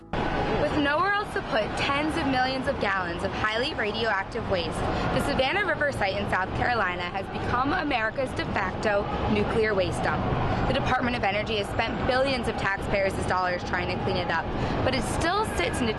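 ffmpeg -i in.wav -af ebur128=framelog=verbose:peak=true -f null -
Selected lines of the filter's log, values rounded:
Integrated loudness:
  I:         -26.0 LUFS
  Threshold: -36.0 LUFS
Loudness range:
  LRA:         0.9 LU
  Threshold: -46.0 LUFS
  LRA low:   -26.5 LUFS
  LRA high:  -25.6 LUFS
True peak:
  Peak:      -11.0 dBFS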